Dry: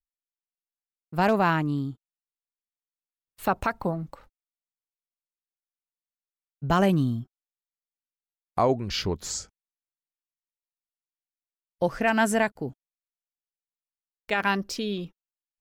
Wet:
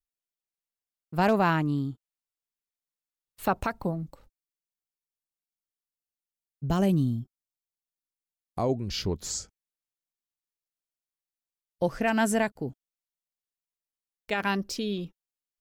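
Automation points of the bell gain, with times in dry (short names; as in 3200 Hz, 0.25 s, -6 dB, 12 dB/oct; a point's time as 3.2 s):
bell 1400 Hz 2.5 oct
3.55 s -2 dB
4.07 s -11.5 dB
8.76 s -11.5 dB
9.27 s -4.5 dB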